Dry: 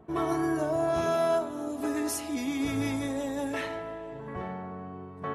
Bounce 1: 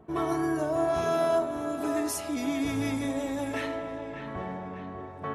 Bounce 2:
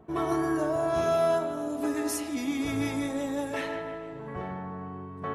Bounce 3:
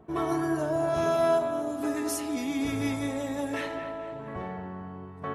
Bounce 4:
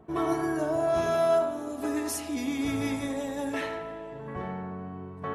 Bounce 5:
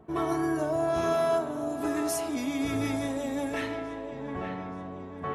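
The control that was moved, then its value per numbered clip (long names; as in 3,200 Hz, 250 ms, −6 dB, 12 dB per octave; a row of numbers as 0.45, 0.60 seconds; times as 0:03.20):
delay with a low-pass on its return, delay time: 597, 152, 226, 86, 877 milliseconds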